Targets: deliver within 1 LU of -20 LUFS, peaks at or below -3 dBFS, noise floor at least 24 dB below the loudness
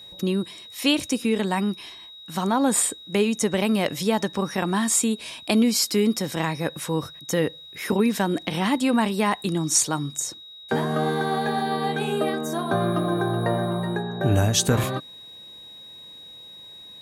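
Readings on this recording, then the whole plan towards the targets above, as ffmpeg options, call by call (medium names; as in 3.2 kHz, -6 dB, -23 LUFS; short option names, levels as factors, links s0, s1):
steady tone 3.8 kHz; tone level -41 dBFS; loudness -24.0 LUFS; peak level -7.5 dBFS; loudness target -20.0 LUFS
-> -af "bandreject=f=3800:w=30"
-af "volume=1.58"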